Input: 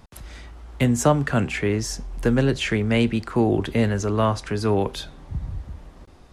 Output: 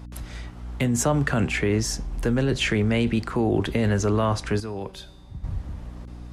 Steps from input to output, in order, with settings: in parallel at +0.5 dB: negative-ratio compressor -22 dBFS, ratio -0.5; on the sum: hum 60 Hz, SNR 15 dB; 4.6–5.44 resonator 190 Hz, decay 1.2 s, mix 70%; gain -6 dB

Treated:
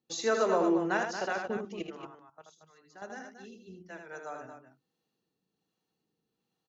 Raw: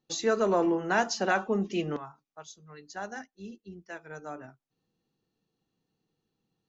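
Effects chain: HPF 150 Hz 6 dB/oct; notches 50/100/150/200/250/300/350 Hz; 0.97–3.02 level quantiser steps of 15 dB; harmonic tremolo 1.3 Hz, depth 50%, crossover 430 Hz; tapped delay 80/229 ms -5.5/-9 dB

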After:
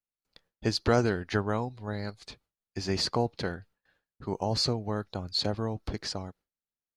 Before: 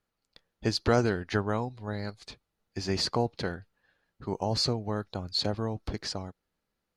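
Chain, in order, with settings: gate with hold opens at -59 dBFS

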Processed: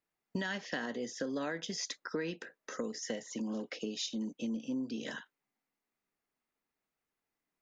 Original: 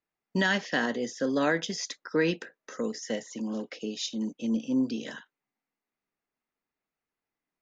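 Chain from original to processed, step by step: compressor 6:1, threshold -34 dBFS, peak gain reduction 12.5 dB

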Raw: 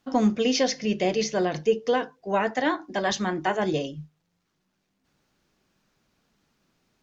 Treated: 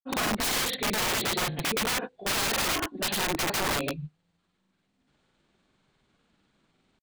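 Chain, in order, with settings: nonlinear frequency compression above 1800 Hz 1.5:1; grains 0.1 s, grains 20/s; wrapped overs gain 25 dB; gain +2.5 dB

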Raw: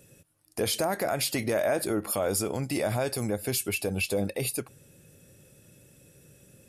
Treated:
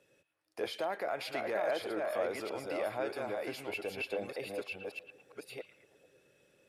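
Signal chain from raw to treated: reverse delay 0.624 s, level -3 dB; three-band isolator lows -18 dB, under 340 Hz, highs -18 dB, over 4600 Hz; delay with a stepping band-pass 0.112 s, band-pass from 2600 Hz, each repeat -0.7 oct, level -10.5 dB; dynamic EQ 6500 Hz, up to -5 dB, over -48 dBFS, Q 0.72; gain -6 dB

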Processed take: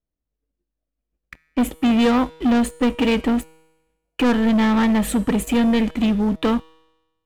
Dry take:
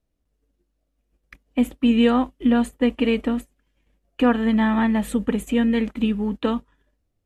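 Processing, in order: high shelf 5400 Hz -11 dB, from 1.6 s +2 dB; sample leveller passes 3; resonator 160 Hz, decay 1.1 s, mix 50%; gain +1.5 dB

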